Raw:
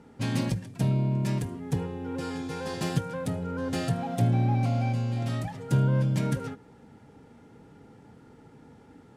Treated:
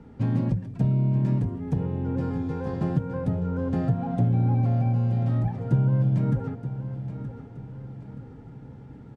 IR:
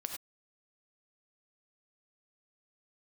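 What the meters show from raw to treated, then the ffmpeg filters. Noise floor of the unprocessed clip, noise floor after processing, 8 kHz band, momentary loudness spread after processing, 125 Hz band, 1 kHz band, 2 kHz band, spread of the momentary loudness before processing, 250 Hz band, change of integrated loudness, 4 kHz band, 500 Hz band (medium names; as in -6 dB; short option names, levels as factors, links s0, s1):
-54 dBFS, -45 dBFS, under -15 dB, 18 LU, +4.0 dB, -2.0 dB, no reading, 9 LU, +3.0 dB, +3.0 dB, under -10 dB, +0.5 dB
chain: -filter_complex "[0:a]aemphasis=mode=reproduction:type=bsi,acrossover=split=120|1500[s0][s1][s2];[s0]acompressor=threshold=0.0251:ratio=4[s3];[s1]acompressor=threshold=0.0794:ratio=4[s4];[s2]acompressor=threshold=0.001:ratio=4[s5];[s3][s4][s5]amix=inputs=3:normalize=0,aecho=1:1:924|1848|2772|3696:0.266|0.114|0.0492|0.0212"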